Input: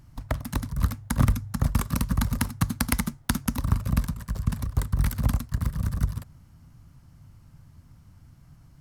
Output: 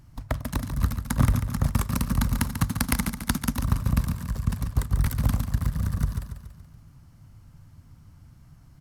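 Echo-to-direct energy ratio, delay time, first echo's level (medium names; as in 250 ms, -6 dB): -7.5 dB, 142 ms, -8.5 dB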